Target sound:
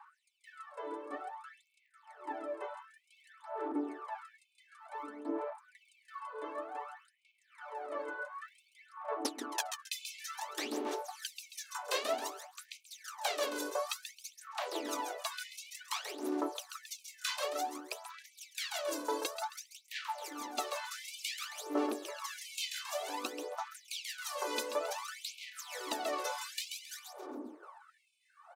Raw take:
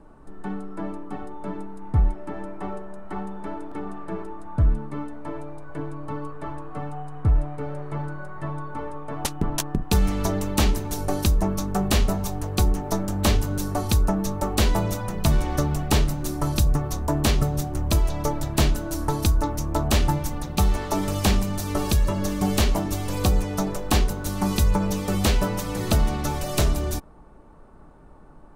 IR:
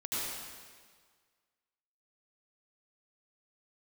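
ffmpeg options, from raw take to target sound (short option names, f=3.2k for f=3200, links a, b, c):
-filter_complex "[0:a]lowshelf=f=100:g=-11.5,aecho=1:1:135|270|405|540:0.447|0.134|0.0402|0.0121,acrossover=split=220|1000[a][b][c];[a]acompressor=mode=upward:threshold=-22dB:ratio=2.5[d];[d][b][c]amix=inputs=3:normalize=0,highshelf=f=9.3k:g=-11.5,aphaser=in_gain=1:out_gain=1:delay=2:decay=0.73:speed=0.55:type=sinusoidal,areverse,acompressor=threshold=-36dB:ratio=5,areverse,afftfilt=real='re*gte(b*sr/1024,220*pow(2200/220,0.5+0.5*sin(2*PI*0.72*pts/sr)))':imag='im*gte(b*sr/1024,220*pow(2200/220,0.5+0.5*sin(2*PI*0.72*pts/sr)))':win_size=1024:overlap=0.75,volume=6dB"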